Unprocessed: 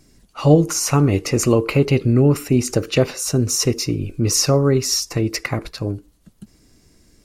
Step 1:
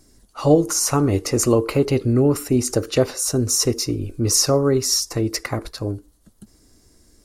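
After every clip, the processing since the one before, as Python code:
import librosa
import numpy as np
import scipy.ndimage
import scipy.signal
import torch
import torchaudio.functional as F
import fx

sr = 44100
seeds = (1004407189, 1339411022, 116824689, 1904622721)

y = fx.graphic_eq_15(x, sr, hz=(160, 2500, 10000), db=(-8, -8, 4))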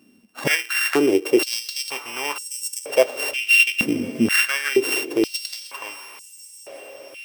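y = np.r_[np.sort(x[:len(x) // 16 * 16].reshape(-1, 16), axis=1).ravel(), x[len(x) // 16 * 16:]]
y = fx.echo_diffused(y, sr, ms=1090, feedback_pct=50, wet_db=-14)
y = fx.filter_held_highpass(y, sr, hz=2.1, low_hz=220.0, high_hz=7200.0)
y = F.gain(torch.from_numpy(y), -3.5).numpy()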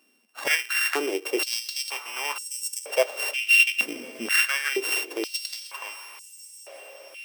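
y = scipy.signal.sosfilt(scipy.signal.butter(2, 590.0, 'highpass', fs=sr, output='sos'), x)
y = F.gain(torch.from_numpy(y), -2.5).numpy()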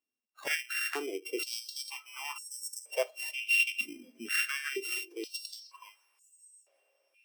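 y = fx.noise_reduce_blind(x, sr, reduce_db=20)
y = F.gain(torch.from_numpy(y), -9.0).numpy()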